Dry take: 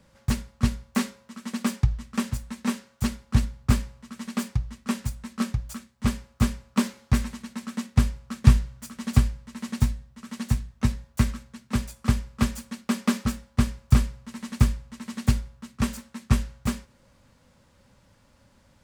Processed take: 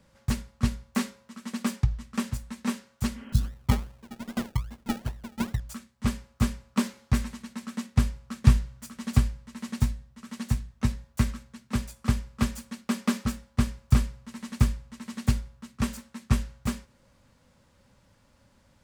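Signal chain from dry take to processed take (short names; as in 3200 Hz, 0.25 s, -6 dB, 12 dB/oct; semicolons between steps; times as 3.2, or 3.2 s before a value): 3.24–5.6 decimation with a swept rate 33×, swing 60% 2.5 Hz; 3.18–3.42 spectral repair 230–3300 Hz; gain -2.5 dB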